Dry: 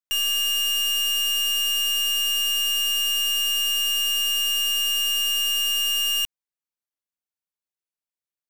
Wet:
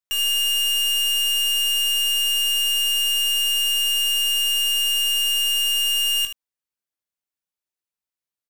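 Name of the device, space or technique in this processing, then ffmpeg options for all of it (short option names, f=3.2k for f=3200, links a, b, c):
slapback doubling: -filter_complex "[0:a]asplit=3[a][b][c];[b]adelay=19,volume=-7dB[d];[c]adelay=76,volume=-9dB[e];[a][d][e]amix=inputs=3:normalize=0"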